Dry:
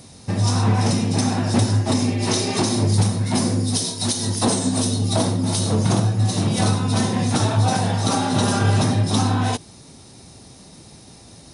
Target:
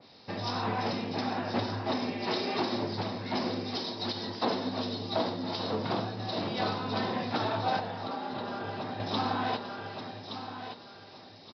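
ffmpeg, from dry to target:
ffmpeg -i in.wav -filter_complex "[0:a]highpass=frequency=140:poles=1,asplit=2[link_01][link_02];[link_02]aecho=0:1:1171|2342|3513:0.316|0.0822|0.0214[link_03];[link_01][link_03]amix=inputs=2:normalize=0,aresample=11025,aresample=44100,bass=frequency=250:gain=-12,treble=frequency=4000:gain=2,asettb=1/sr,asplit=3[link_04][link_05][link_06];[link_04]atrim=end=7.794[link_07];[link_05]atrim=start=7.79:end=9,asetpts=PTS-STARTPTS,afade=type=in:duration=0.004:curve=qsin,afade=type=out:start_time=1.206:duration=0.004:curve=qsin,acrossover=split=970|3100[link_08][link_09][link_10];[link_08]acompressor=threshold=-30dB:ratio=4[link_11];[link_09]acompressor=threshold=-39dB:ratio=4[link_12];[link_10]acompressor=threshold=-44dB:ratio=4[link_13];[link_11][link_12][link_13]amix=inputs=3:normalize=0[link_14];[link_06]atrim=start=8.996[link_15];[link_07][link_14]acrossfade=duration=0.004:curve1=hsin:curve2=qsin[link_16];[link_16][link_15]acrossfade=duration=0.004:curve1=qsin:curve2=hsin,adynamicequalizer=threshold=0.01:dfrequency=2700:dqfactor=0.7:tfrequency=2700:tqfactor=0.7:attack=5:release=100:ratio=0.375:range=2.5:mode=cutabove:tftype=highshelf,volume=-5.5dB" out.wav

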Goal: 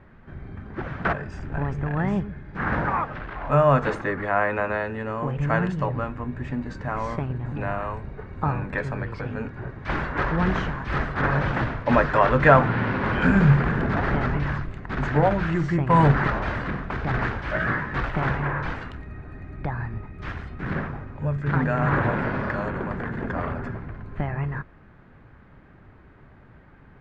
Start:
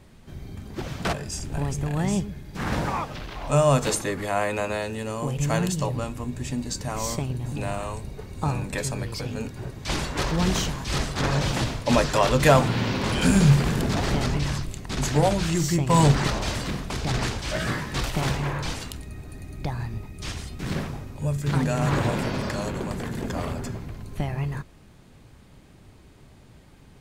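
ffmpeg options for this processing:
ffmpeg -i in.wav -af "lowpass=frequency=1600:width_type=q:width=2.4" out.wav

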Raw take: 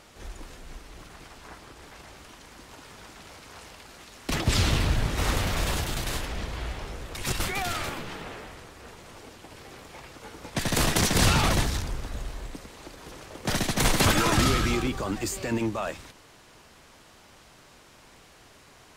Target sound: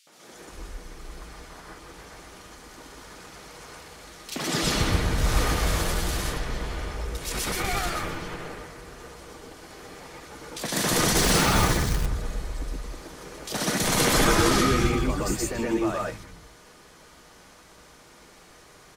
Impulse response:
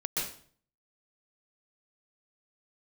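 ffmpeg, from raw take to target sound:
-filter_complex "[0:a]acrossover=split=150|2700[link_01][link_02][link_03];[link_02]adelay=70[link_04];[link_01]adelay=330[link_05];[link_05][link_04][link_03]amix=inputs=3:normalize=0[link_06];[1:a]atrim=start_sample=2205,afade=type=out:start_time=0.18:duration=0.01,atrim=end_sample=8379[link_07];[link_06][link_07]afir=irnorm=-1:irlink=0,asettb=1/sr,asplit=3[link_08][link_09][link_10];[link_08]atrim=end=11.174[link_11];[link_09]atrim=start=11.17:end=12.06,asetpts=PTS-STARTPTS,afade=type=in:duration=0.004:curve=qsin,afade=type=out:start_time=0.886:duration=0.004:curve=qsin,acrusher=bits=3:mode=log:mix=0:aa=0.000001[link_12];[link_10]atrim=start=12.056[link_13];[link_11][link_12]acrossfade=duration=0.004:curve1=hsin:curve2=qsin[link_14];[link_14][link_13]acrossfade=duration=0.004:curve1=qsin:curve2=hsin"

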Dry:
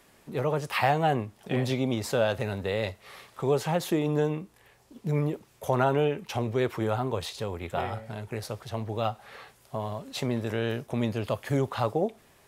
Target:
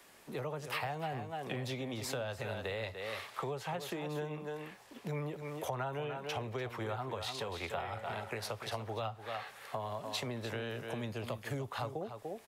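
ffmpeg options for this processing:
ffmpeg -i in.wav -filter_complex "[0:a]acrossover=split=260|480|4300[link_01][link_02][link_03][link_04];[link_03]dynaudnorm=framelen=240:gausssize=21:maxgain=6dB[link_05];[link_01][link_02][link_05][link_04]amix=inputs=4:normalize=0,aecho=1:1:293:0.299,acrossover=split=130[link_06][link_07];[link_07]acompressor=threshold=-35dB:ratio=10[link_08];[link_06][link_08]amix=inputs=2:normalize=0,lowshelf=frequency=290:gain=-10.5,volume=1dB" out.wav

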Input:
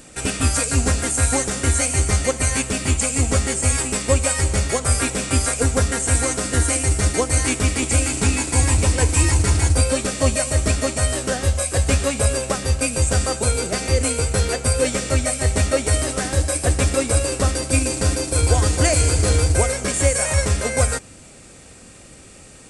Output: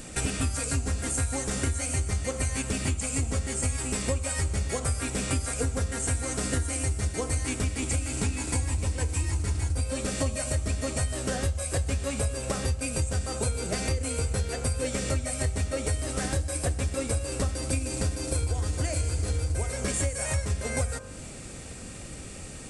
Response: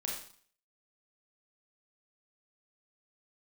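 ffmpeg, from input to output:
-af "lowshelf=frequency=200:gain=6.5,bandreject=frequency=47.74:width_type=h:width=4,bandreject=frequency=95.48:width_type=h:width=4,bandreject=frequency=143.22:width_type=h:width=4,bandreject=frequency=190.96:width_type=h:width=4,bandreject=frequency=238.7:width_type=h:width=4,bandreject=frequency=286.44:width_type=h:width=4,bandreject=frequency=334.18:width_type=h:width=4,bandreject=frequency=381.92:width_type=h:width=4,bandreject=frequency=429.66:width_type=h:width=4,bandreject=frequency=477.4:width_type=h:width=4,bandreject=frequency=525.14:width_type=h:width=4,bandreject=frequency=572.88:width_type=h:width=4,bandreject=frequency=620.62:width_type=h:width=4,bandreject=frequency=668.36:width_type=h:width=4,bandreject=frequency=716.1:width_type=h:width=4,bandreject=frequency=763.84:width_type=h:width=4,bandreject=frequency=811.58:width_type=h:width=4,bandreject=frequency=859.32:width_type=h:width=4,bandreject=frequency=907.06:width_type=h:width=4,bandreject=frequency=954.8:width_type=h:width=4,bandreject=frequency=1002.54:width_type=h:width=4,bandreject=frequency=1050.28:width_type=h:width=4,bandreject=frequency=1098.02:width_type=h:width=4,bandreject=frequency=1145.76:width_type=h:width=4,bandreject=frequency=1193.5:width_type=h:width=4,bandreject=frequency=1241.24:width_type=h:width=4,bandreject=frequency=1288.98:width_type=h:width=4,bandreject=frequency=1336.72:width_type=h:width=4,bandreject=frequency=1384.46:width_type=h:width=4,bandreject=frequency=1432.2:width_type=h:width=4,bandreject=frequency=1479.94:width_type=h:width=4,bandreject=frequency=1527.68:width_type=h:width=4,bandreject=frequency=1575.42:width_type=h:width=4,bandreject=frequency=1623.16:width_type=h:width=4,acompressor=threshold=-26dB:ratio=10,volume=1dB"

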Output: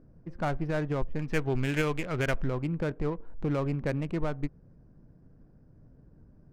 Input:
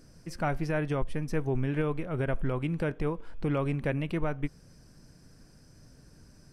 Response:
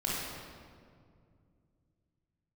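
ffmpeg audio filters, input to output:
-af "asetnsamples=nb_out_samples=441:pad=0,asendcmd='1.19 equalizer g 12.5;2.44 equalizer g -2.5',equalizer=frequency=3100:width=0.66:gain=-2.5,adynamicsmooth=sensitivity=7:basefreq=850"

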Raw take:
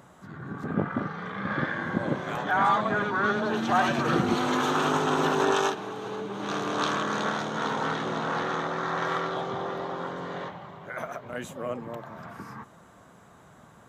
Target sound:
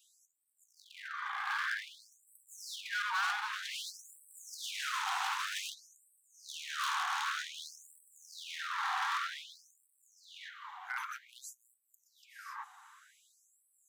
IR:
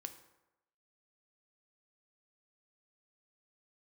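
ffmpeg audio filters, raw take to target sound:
-af "volume=29.5dB,asoftclip=hard,volume=-29.5dB,adynamicequalizer=threshold=0.00501:dfrequency=380:dqfactor=2.4:tfrequency=380:tqfactor=2.4:attack=5:release=100:ratio=0.375:range=1.5:mode=cutabove:tftype=bell,afftfilt=real='re*gte(b*sr/1024,710*pow(7800/710,0.5+0.5*sin(2*PI*0.53*pts/sr)))':imag='im*gte(b*sr/1024,710*pow(7800/710,0.5+0.5*sin(2*PI*0.53*pts/sr)))':win_size=1024:overlap=0.75"

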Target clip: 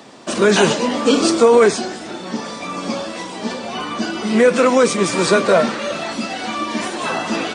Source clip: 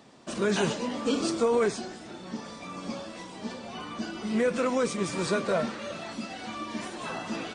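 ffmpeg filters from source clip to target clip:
ffmpeg -i in.wav -filter_complex "[0:a]acrossover=split=230[link_01][link_02];[link_01]highpass=50[link_03];[link_02]acontrast=47[link_04];[link_03][link_04]amix=inputs=2:normalize=0,bandreject=frequency=50:width_type=h:width=6,bandreject=frequency=100:width_type=h:width=6,bandreject=frequency=150:width_type=h:width=6,volume=8dB" out.wav

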